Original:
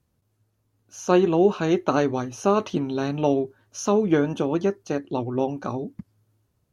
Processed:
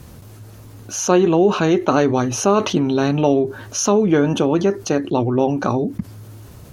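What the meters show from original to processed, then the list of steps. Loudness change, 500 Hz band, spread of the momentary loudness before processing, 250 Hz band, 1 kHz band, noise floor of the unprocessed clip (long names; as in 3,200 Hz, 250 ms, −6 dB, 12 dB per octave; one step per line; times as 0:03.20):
+6.0 dB, +5.5 dB, 10 LU, +6.0 dB, +6.0 dB, −72 dBFS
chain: envelope flattener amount 50%
level +2.5 dB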